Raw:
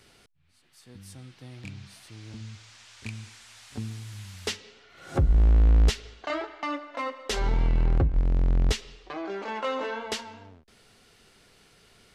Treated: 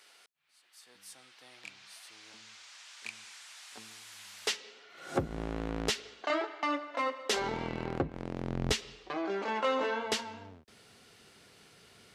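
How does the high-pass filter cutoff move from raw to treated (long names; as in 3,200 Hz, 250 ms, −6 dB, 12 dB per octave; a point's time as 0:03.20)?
0:04.12 720 Hz
0:05.10 230 Hz
0:08.36 230 Hz
0:08.81 87 Hz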